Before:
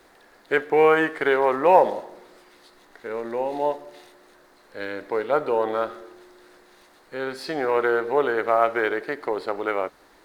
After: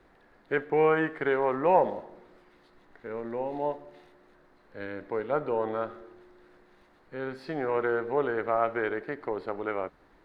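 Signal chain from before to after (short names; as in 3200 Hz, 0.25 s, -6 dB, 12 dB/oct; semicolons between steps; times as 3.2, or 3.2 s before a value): tone controls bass +10 dB, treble -14 dB; gain -7 dB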